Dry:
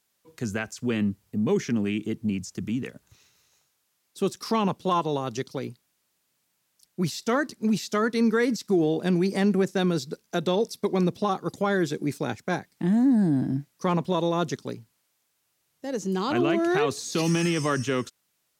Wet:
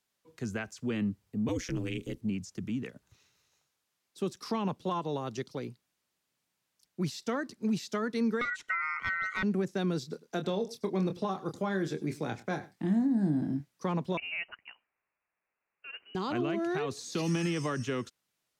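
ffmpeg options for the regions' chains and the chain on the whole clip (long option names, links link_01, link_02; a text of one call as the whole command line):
ffmpeg -i in.wav -filter_complex "[0:a]asettb=1/sr,asplit=3[link_01][link_02][link_03];[link_01]atrim=end=1.484[link_04];[link_02]atrim=start=1.48:end=2.21,asetpts=PTS-STARTPTS,afade=type=in:duration=0.004:curve=qsin,afade=type=out:start_time=0.726:duration=0.004:curve=qsin,highshelf=frequency=3700:gain=11.5,aeval=exprs='val(0)*sin(2*PI*92*n/s)':channel_layout=same[link_05];[link_03]atrim=start=2.206[link_06];[link_04][link_05]acrossfade=duration=0.004:curve1=hsin:curve2=qsin[link_07];[link_07][link_06]acrossfade=duration=0.004:curve1=qsin:curve2=hsin,asettb=1/sr,asplit=3[link_08][link_09][link_10];[link_08]atrim=end=8.414[link_11];[link_09]atrim=start=8.41:end=9.43,asetpts=PTS-STARTPTS,afade=type=in:duration=0.004:curve=qsin,afade=type=out:start_time=1.016:duration=0.004:curve=qsin,aemphasis=mode=reproduction:type=50fm,acontrast=46,aeval=exprs='val(0)*sin(2*PI*1700*n/s)':channel_layout=same[link_12];[link_10]atrim=start=9.426[link_13];[link_11][link_12]acrossfade=duration=0.004:curve1=hsin:curve2=qsin[link_14];[link_14][link_13]acrossfade=duration=0.004:curve1=qsin:curve2=hsin,asettb=1/sr,asplit=3[link_15][link_16][link_17];[link_15]atrim=end=10.004[link_18];[link_16]atrim=start=10:end=13.6,asetpts=PTS-STARTPTS,afade=type=in:duration=0.004:curve=qsin,afade=type=out:start_time=3.596:duration=0.004:curve=qsin,asplit=2[link_19][link_20];[link_20]adelay=26,volume=-8dB[link_21];[link_19][link_21]amix=inputs=2:normalize=0,atrim=end_sample=158760,aecho=1:1:99:0.1,atrim=end_sample=158760[link_22];[link_17]atrim=start=13.596[link_23];[link_18][link_22]acrossfade=duration=0.004:curve1=hsin:curve2=qsin[link_24];[link_24][link_23]acrossfade=duration=0.004:curve1=qsin:curve2=hsin,asettb=1/sr,asplit=3[link_25][link_26][link_27];[link_25]atrim=end=14.174[link_28];[link_26]atrim=start=14.17:end=16.15,asetpts=PTS-STARTPTS,afade=type=in:duration=0.004:curve=qsin,afade=type=out:start_time=1.976:duration=0.004:curve=qsin,highpass=frequency=620:width=0.5412,highpass=frequency=620:width=1.3066,lowpass=frequency=2800:width_type=q:width=0.5098,lowpass=frequency=2800:width_type=q:width=0.6013,lowpass=frequency=2800:width_type=q:width=0.9,lowpass=frequency=2800:width_type=q:width=2.563,afreqshift=-3300[link_29];[link_27]atrim=start=16.146[link_30];[link_28][link_29]acrossfade=duration=0.004:curve1=hsin:curve2=qsin[link_31];[link_31][link_30]acrossfade=duration=0.004:curve1=qsin:curve2=hsin,highshelf=frequency=8200:gain=-8,acrossover=split=220[link_32][link_33];[link_33]acompressor=threshold=-24dB:ratio=6[link_34];[link_32][link_34]amix=inputs=2:normalize=0,volume=-5.5dB" out.wav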